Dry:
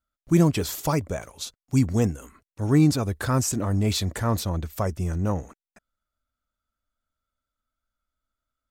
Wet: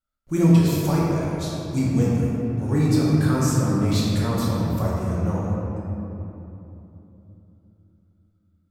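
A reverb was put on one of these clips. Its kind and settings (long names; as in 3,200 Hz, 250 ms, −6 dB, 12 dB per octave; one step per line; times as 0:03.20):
rectangular room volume 150 cubic metres, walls hard, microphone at 0.99 metres
level −6.5 dB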